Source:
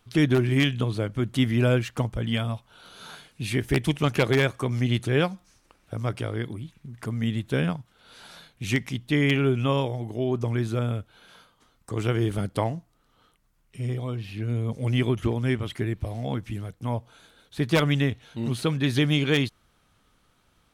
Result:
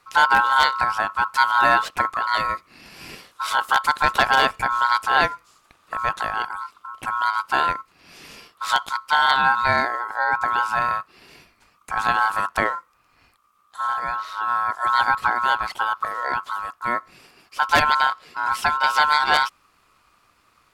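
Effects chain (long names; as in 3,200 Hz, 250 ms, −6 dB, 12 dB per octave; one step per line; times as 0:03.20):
ring modulation 1,200 Hz
level +7 dB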